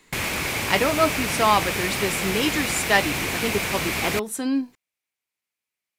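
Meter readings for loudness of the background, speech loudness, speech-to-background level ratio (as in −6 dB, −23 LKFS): −25.0 LKFS, −24.5 LKFS, 0.5 dB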